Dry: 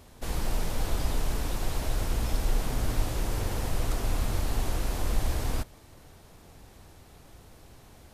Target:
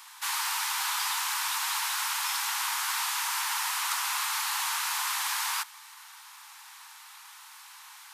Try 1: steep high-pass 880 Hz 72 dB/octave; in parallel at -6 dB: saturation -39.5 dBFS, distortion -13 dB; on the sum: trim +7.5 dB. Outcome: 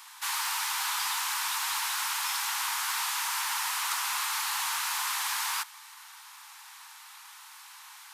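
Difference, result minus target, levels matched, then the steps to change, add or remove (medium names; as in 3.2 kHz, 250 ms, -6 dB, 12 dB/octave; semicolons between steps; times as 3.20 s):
saturation: distortion +10 dB
change: saturation -32 dBFS, distortion -23 dB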